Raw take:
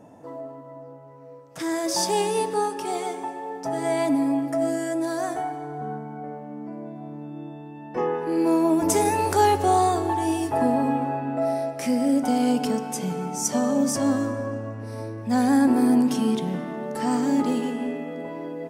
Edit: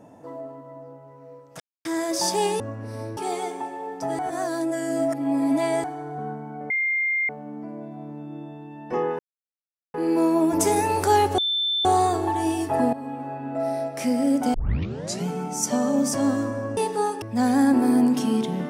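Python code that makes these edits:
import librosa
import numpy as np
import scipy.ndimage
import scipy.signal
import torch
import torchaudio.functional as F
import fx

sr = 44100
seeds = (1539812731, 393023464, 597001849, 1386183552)

y = fx.edit(x, sr, fx.insert_silence(at_s=1.6, length_s=0.25),
    fx.swap(start_s=2.35, length_s=0.45, other_s=14.59, other_length_s=0.57),
    fx.reverse_span(start_s=3.82, length_s=1.65),
    fx.insert_tone(at_s=6.33, length_s=0.59, hz=2110.0, db=-20.5),
    fx.insert_silence(at_s=8.23, length_s=0.75),
    fx.insert_tone(at_s=9.67, length_s=0.47, hz=3540.0, db=-21.0),
    fx.fade_in_from(start_s=10.75, length_s=0.94, floor_db=-14.5),
    fx.tape_start(start_s=12.36, length_s=0.73), tone=tone)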